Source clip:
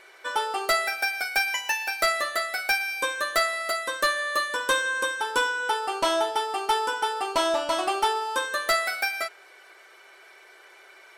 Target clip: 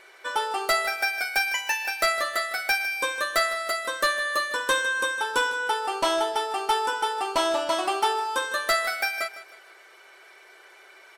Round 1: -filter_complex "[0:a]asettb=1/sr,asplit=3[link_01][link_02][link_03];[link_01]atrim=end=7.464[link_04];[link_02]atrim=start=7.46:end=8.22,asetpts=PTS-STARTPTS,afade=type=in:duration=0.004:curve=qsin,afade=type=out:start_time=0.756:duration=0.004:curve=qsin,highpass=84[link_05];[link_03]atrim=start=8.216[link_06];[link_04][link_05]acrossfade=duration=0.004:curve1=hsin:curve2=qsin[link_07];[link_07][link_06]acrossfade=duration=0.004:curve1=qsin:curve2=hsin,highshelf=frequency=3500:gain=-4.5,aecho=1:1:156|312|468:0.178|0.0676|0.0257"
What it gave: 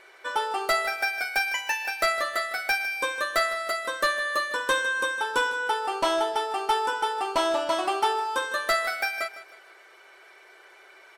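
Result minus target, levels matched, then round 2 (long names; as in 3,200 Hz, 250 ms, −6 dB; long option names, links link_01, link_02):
8,000 Hz band −3.0 dB
-filter_complex "[0:a]asettb=1/sr,asplit=3[link_01][link_02][link_03];[link_01]atrim=end=7.464[link_04];[link_02]atrim=start=7.46:end=8.22,asetpts=PTS-STARTPTS,afade=type=in:duration=0.004:curve=qsin,afade=type=out:start_time=0.756:duration=0.004:curve=qsin,highpass=84[link_05];[link_03]atrim=start=8.216[link_06];[link_04][link_05]acrossfade=duration=0.004:curve1=hsin:curve2=qsin[link_07];[link_07][link_06]acrossfade=duration=0.004:curve1=qsin:curve2=hsin,aecho=1:1:156|312|468:0.178|0.0676|0.0257"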